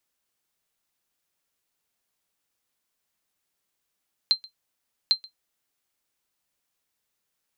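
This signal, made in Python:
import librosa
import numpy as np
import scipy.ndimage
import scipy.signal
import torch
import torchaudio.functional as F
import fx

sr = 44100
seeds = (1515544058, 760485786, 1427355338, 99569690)

y = fx.sonar_ping(sr, hz=4130.0, decay_s=0.11, every_s=0.8, pings=2, echo_s=0.13, echo_db=-23.5, level_db=-10.5)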